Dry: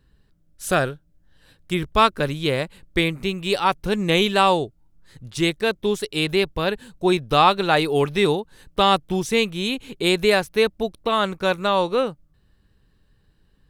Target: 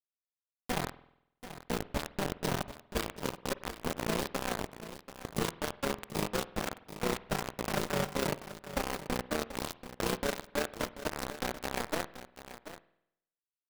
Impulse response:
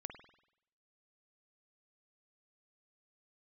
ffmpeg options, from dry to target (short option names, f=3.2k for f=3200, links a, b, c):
-filter_complex "[0:a]firequalizer=gain_entry='entry(110,0);entry(190,-5);entry(620,-13);entry(1000,-27);entry(1900,-29);entry(7400,-20)':delay=0.05:min_phase=1,asplit=2[a][b];[b]asetrate=58866,aresample=44100,atempo=0.749154,volume=0dB[c];[a][c]amix=inputs=2:normalize=0,acrossover=split=130|720[d][e][f];[d]acompressor=threshold=-39dB:ratio=4[g];[e]acompressor=threshold=-37dB:ratio=4[h];[f]acompressor=threshold=-39dB:ratio=4[i];[g][h][i]amix=inputs=3:normalize=0,equalizer=f=1.4k:t=o:w=0.99:g=-4,acrusher=bits=4:mix=0:aa=0.000001,tremolo=f=31:d=0.621,aecho=1:1:735:0.224,asplit=2[j][k];[1:a]atrim=start_sample=2205[l];[k][l]afir=irnorm=-1:irlink=0,volume=-4dB[m];[j][m]amix=inputs=2:normalize=0"